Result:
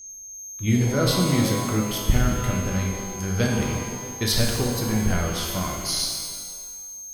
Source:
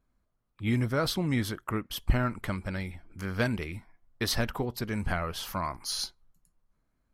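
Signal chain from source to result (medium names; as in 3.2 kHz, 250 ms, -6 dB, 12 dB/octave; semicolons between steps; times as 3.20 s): whistle 6.4 kHz -47 dBFS; graphic EQ 250/1000/2000 Hz -3/-10/-5 dB; pitch-shifted reverb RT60 1.6 s, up +12 st, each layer -8 dB, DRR -1 dB; trim +6 dB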